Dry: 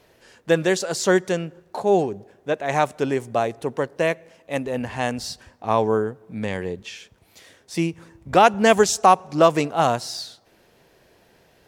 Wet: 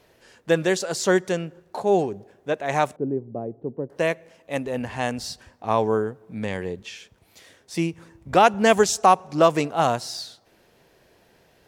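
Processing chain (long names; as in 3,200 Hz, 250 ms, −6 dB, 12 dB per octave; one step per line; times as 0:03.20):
0:02.96–0:03.90: flat-topped band-pass 210 Hz, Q 0.64
level −1.5 dB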